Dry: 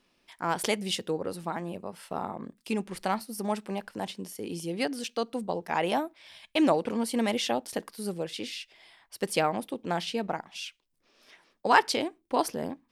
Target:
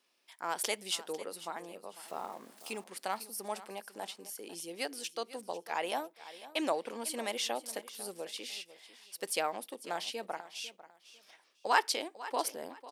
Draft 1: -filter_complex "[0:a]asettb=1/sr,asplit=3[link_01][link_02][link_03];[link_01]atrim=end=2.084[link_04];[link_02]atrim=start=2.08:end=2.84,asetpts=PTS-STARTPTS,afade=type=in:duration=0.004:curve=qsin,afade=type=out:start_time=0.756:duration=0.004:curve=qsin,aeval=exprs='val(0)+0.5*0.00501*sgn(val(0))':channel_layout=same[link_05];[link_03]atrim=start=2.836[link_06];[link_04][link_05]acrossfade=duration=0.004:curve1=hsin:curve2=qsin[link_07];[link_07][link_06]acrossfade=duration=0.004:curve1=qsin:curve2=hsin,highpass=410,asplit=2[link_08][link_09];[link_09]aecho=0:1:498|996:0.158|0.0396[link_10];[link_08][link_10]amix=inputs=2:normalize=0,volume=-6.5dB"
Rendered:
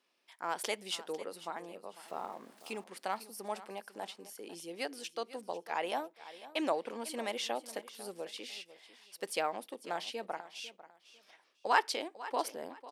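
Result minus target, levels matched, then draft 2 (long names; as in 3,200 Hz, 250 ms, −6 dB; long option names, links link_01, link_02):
8,000 Hz band −5.0 dB
-filter_complex "[0:a]asettb=1/sr,asplit=3[link_01][link_02][link_03];[link_01]atrim=end=2.084[link_04];[link_02]atrim=start=2.08:end=2.84,asetpts=PTS-STARTPTS,afade=type=in:duration=0.004:curve=qsin,afade=type=out:start_time=0.756:duration=0.004:curve=qsin,aeval=exprs='val(0)+0.5*0.00501*sgn(val(0))':channel_layout=same[link_05];[link_03]atrim=start=2.836[link_06];[link_04][link_05]acrossfade=duration=0.004:curve1=hsin:curve2=qsin[link_07];[link_07][link_06]acrossfade=duration=0.004:curve1=qsin:curve2=hsin,highpass=410,highshelf=frequency=5100:gain=8.5,asplit=2[link_08][link_09];[link_09]aecho=0:1:498|996:0.158|0.0396[link_10];[link_08][link_10]amix=inputs=2:normalize=0,volume=-6.5dB"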